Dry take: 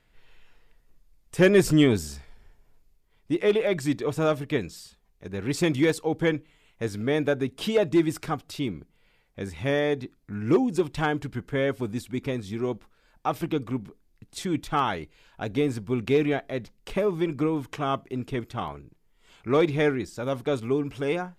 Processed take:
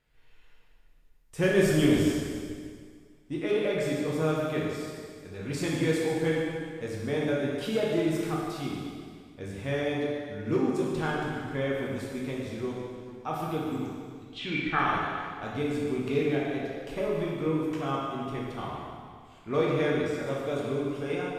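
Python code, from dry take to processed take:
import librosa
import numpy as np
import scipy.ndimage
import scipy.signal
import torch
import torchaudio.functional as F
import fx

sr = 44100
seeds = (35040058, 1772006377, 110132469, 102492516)

y = fx.lowpass_res(x, sr, hz=fx.line((13.71, 7800.0), (14.78, 1700.0)), q=12.0, at=(13.71, 14.78), fade=0.02)
y = fx.echo_feedback(y, sr, ms=147, feedback_pct=53, wet_db=-12.5)
y = fx.rev_plate(y, sr, seeds[0], rt60_s=1.9, hf_ratio=0.9, predelay_ms=0, drr_db=-4.5)
y = y * 10.0 ** (-9.0 / 20.0)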